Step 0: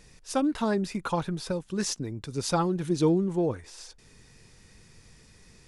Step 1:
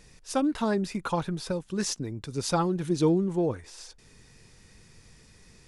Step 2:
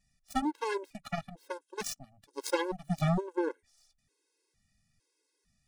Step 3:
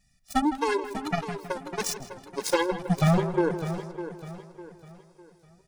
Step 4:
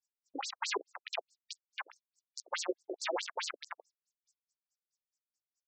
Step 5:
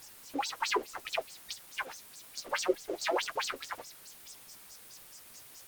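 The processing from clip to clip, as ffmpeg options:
-af anull
-af "highshelf=f=5.8k:g=6,aeval=exprs='0.266*(cos(1*acos(clip(val(0)/0.266,-1,1)))-cos(1*PI/2))+0.0422*(cos(7*acos(clip(val(0)/0.266,-1,1)))-cos(7*PI/2))':c=same,afftfilt=real='re*gt(sin(2*PI*1.1*pts/sr)*(1-2*mod(floor(b*sr/1024/280),2)),0)':imag='im*gt(sin(2*PI*1.1*pts/sr)*(1-2*mod(floor(b*sr/1024/280),2)),0)':win_size=1024:overlap=0.75"
-filter_complex "[0:a]asplit=2[a][b];[b]adelay=160,lowpass=f=2.8k:p=1,volume=-11.5dB,asplit=2[c][d];[d]adelay=160,lowpass=f=2.8k:p=1,volume=0.54,asplit=2[e][f];[f]adelay=160,lowpass=f=2.8k:p=1,volume=0.54,asplit=2[g][h];[h]adelay=160,lowpass=f=2.8k:p=1,volume=0.54,asplit=2[i][j];[j]adelay=160,lowpass=f=2.8k:p=1,volume=0.54,asplit=2[k][l];[l]adelay=160,lowpass=f=2.8k:p=1,volume=0.54[m];[c][e][g][i][k][m]amix=inputs=6:normalize=0[n];[a][n]amix=inputs=2:normalize=0,asoftclip=type=hard:threshold=-21dB,asplit=2[o][p];[p]aecho=0:1:603|1206|1809|2412:0.266|0.0984|0.0364|0.0135[q];[o][q]amix=inputs=2:normalize=0,volume=7dB"
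-filter_complex "[0:a]acrossover=split=7000[a][b];[a]acrusher=bits=3:mix=0:aa=0.000001[c];[c][b]amix=inputs=2:normalize=0,afftfilt=real='re*between(b*sr/1024,370*pow(6100/370,0.5+0.5*sin(2*PI*4.7*pts/sr))/1.41,370*pow(6100/370,0.5+0.5*sin(2*PI*4.7*pts/sr))*1.41)':imag='im*between(b*sr/1024,370*pow(6100/370,0.5+0.5*sin(2*PI*4.7*pts/sr))/1.41,370*pow(6100/370,0.5+0.5*sin(2*PI*4.7*pts/sr))*1.41)':win_size=1024:overlap=0.75,volume=-2.5dB"
-af "aeval=exprs='val(0)+0.5*0.00596*sgn(val(0))':c=same,flanger=delay=5.8:depth=7.2:regen=-37:speed=1.8:shape=triangular,volume=8.5dB" -ar 48000 -c:a libopus -b:a 32k

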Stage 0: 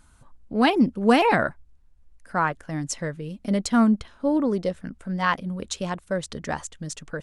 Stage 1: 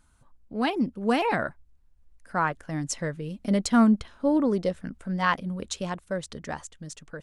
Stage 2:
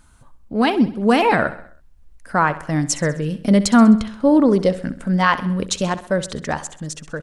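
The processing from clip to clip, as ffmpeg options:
-af "dynaudnorm=f=390:g=9:m=11.5dB,volume=-7dB"
-filter_complex "[0:a]asplit=2[a][b];[b]alimiter=limit=-19dB:level=0:latency=1:release=217,volume=0dB[c];[a][c]amix=inputs=2:normalize=0,aecho=1:1:65|130|195|260|325:0.178|0.0907|0.0463|0.0236|0.012,volume=4.5dB"

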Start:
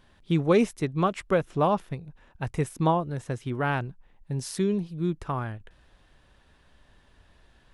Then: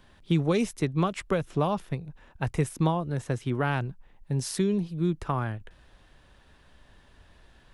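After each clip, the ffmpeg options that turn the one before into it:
-filter_complex "[0:a]acrossover=split=160|3000[a][b][c];[b]acompressor=threshold=-26dB:ratio=6[d];[a][d][c]amix=inputs=3:normalize=0,volume=2.5dB"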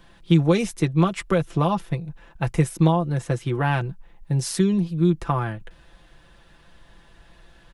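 -af "aecho=1:1:5.9:0.62,volume=3.5dB"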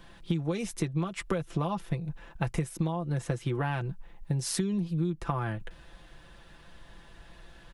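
-af "acompressor=threshold=-26dB:ratio=12"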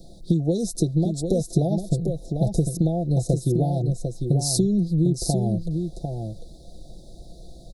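-af "asuperstop=centerf=1700:order=20:qfactor=0.55,aecho=1:1:749:0.501,volume=8.5dB"

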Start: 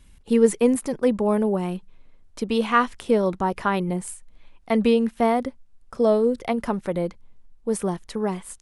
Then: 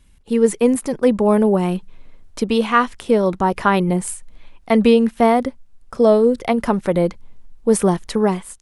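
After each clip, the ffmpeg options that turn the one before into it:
-af "dynaudnorm=f=160:g=5:m=11.5dB,volume=-1dB"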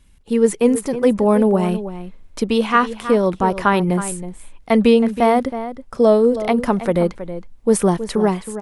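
-filter_complex "[0:a]asplit=2[a][b];[b]adelay=320.7,volume=-12dB,highshelf=f=4k:g=-7.22[c];[a][c]amix=inputs=2:normalize=0"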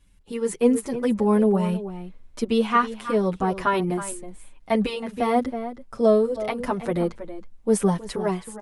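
-filter_complex "[0:a]asplit=2[a][b];[b]adelay=7.2,afreqshift=-0.64[c];[a][c]amix=inputs=2:normalize=1,volume=-3dB"

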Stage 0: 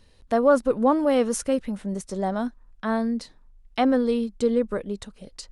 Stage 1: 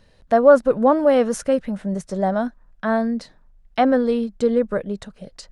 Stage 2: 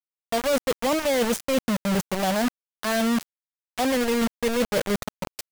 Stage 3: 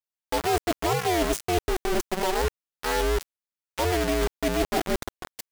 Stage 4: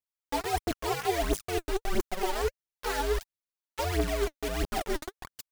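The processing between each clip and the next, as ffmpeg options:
-af "equalizer=f=160:t=o:w=0.67:g=8,equalizer=f=630:t=o:w=0.67:g=8,equalizer=f=1.6k:t=o:w=0.67:g=6,equalizer=f=10k:t=o:w=0.67:g=-4"
-af "areverse,acompressor=threshold=-25dB:ratio=16,areverse,acrusher=bits=4:mix=0:aa=0.000001,volume=4.5dB"
-af "aeval=exprs='val(0)*sin(2*PI*180*n/s)':c=same,volume=1.5dB"
-af "aphaser=in_gain=1:out_gain=1:delay=3.6:decay=0.69:speed=1.5:type=triangular,volume=-8dB"

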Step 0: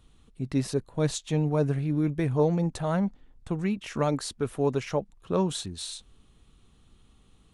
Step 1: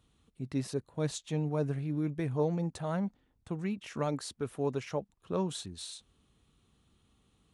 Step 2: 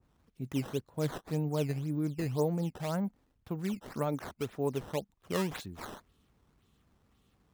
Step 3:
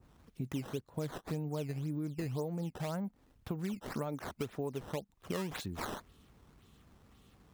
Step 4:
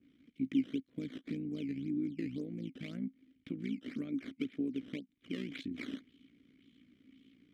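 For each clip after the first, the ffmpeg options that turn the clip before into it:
-af "highpass=63,volume=-6.5dB"
-af "acrusher=samples=11:mix=1:aa=0.000001:lfo=1:lforange=17.6:lforate=1.9,adynamicequalizer=threshold=0.00316:dfrequency=1800:dqfactor=0.7:tfrequency=1800:tqfactor=0.7:attack=5:release=100:ratio=0.375:range=2.5:mode=cutabove:tftype=highshelf"
-af "acompressor=threshold=-42dB:ratio=6,volume=7dB"
-filter_complex "[0:a]tremolo=f=58:d=0.75,asplit=3[a][b][c];[a]bandpass=f=270:t=q:w=8,volume=0dB[d];[b]bandpass=f=2.29k:t=q:w=8,volume=-6dB[e];[c]bandpass=f=3.01k:t=q:w=8,volume=-9dB[f];[d][e][f]amix=inputs=3:normalize=0,volume=14dB"

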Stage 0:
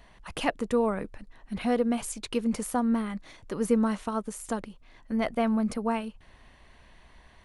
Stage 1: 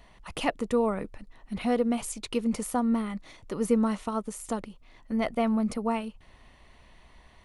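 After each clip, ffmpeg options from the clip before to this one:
-af "bandreject=f=1.6k:w=8.8"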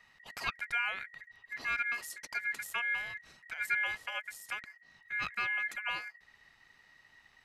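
-af "aeval=exprs='val(0)*sin(2*PI*1900*n/s)':c=same,volume=-5.5dB"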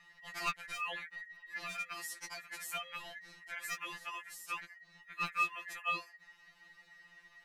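-af "aeval=exprs='0.075*(abs(mod(val(0)/0.075+3,4)-2)-1)':c=same,afftfilt=real='re*2.83*eq(mod(b,8),0)':imag='im*2.83*eq(mod(b,8),0)':win_size=2048:overlap=0.75,volume=3dB"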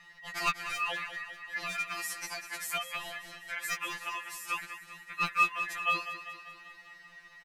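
-af "aecho=1:1:196|392|588|784|980|1176|1372:0.266|0.154|0.0895|0.0519|0.0301|0.0175|0.0101,volume=6dB"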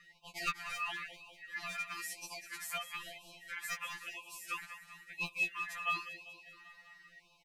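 -af "afftfilt=real='re*(1-between(b*sr/1024,330*pow(1700/330,0.5+0.5*sin(2*PI*0.99*pts/sr))/1.41,330*pow(1700/330,0.5+0.5*sin(2*PI*0.99*pts/sr))*1.41))':imag='im*(1-between(b*sr/1024,330*pow(1700/330,0.5+0.5*sin(2*PI*0.99*pts/sr))/1.41,330*pow(1700/330,0.5+0.5*sin(2*PI*0.99*pts/sr))*1.41))':win_size=1024:overlap=0.75,volume=-5.5dB"

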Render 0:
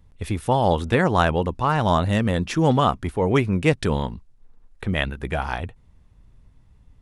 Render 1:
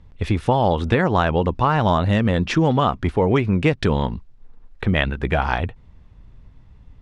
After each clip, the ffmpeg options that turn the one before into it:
-af "lowpass=4.6k,acompressor=threshold=-20dB:ratio=6,volume=6.5dB"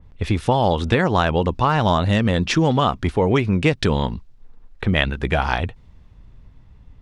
-af "adynamicequalizer=threshold=0.0126:dfrequency=3000:dqfactor=0.7:tfrequency=3000:tqfactor=0.7:attack=5:release=100:ratio=0.375:range=3.5:mode=boostabove:tftype=highshelf"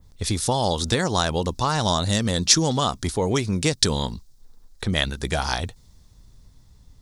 -af "aexciter=amount=11.7:drive=2.7:freq=4k,volume=-5dB"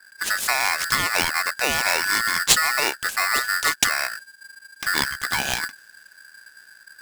-af "areverse,acompressor=mode=upward:threshold=-43dB:ratio=2.5,areverse,aeval=exprs='val(0)*sgn(sin(2*PI*1600*n/s))':c=same"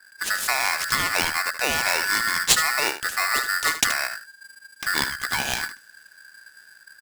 -af "aecho=1:1:76:0.266,volume=-1.5dB"

